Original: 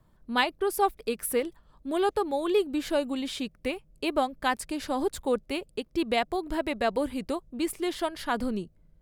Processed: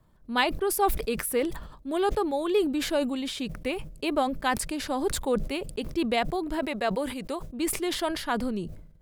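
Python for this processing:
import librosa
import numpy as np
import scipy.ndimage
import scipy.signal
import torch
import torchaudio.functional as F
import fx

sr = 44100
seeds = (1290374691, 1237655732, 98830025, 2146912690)

y = fx.low_shelf(x, sr, hz=230.0, db=-10.0, at=(6.59, 7.5))
y = fx.sustainer(y, sr, db_per_s=68.0)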